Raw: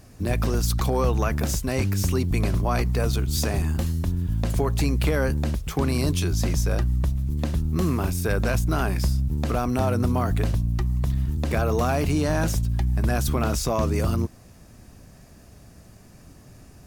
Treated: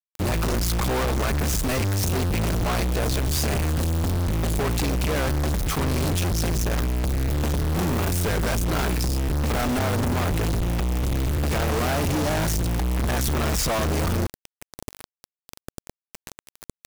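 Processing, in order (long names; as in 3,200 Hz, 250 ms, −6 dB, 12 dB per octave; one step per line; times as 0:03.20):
log-companded quantiser 2 bits
level +2.5 dB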